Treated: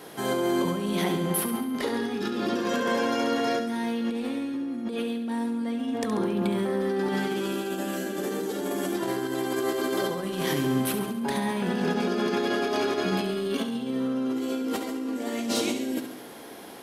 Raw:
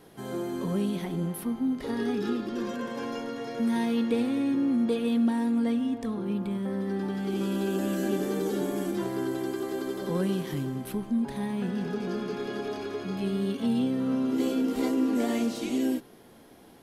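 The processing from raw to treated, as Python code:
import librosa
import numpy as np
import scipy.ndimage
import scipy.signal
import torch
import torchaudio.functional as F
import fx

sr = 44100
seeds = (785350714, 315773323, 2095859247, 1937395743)

y = fx.highpass(x, sr, hz=430.0, slope=6)
y = fx.over_compress(y, sr, threshold_db=-38.0, ratio=-1.0)
y = fx.echo_feedback(y, sr, ms=69, feedback_pct=57, wet_db=-9.0)
y = y * librosa.db_to_amplitude(8.5)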